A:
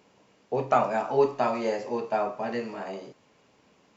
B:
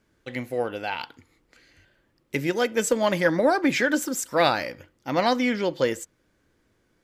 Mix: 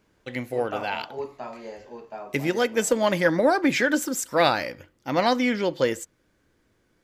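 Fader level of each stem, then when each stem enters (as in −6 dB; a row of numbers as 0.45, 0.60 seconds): −11.0, +0.5 decibels; 0.00, 0.00 seconds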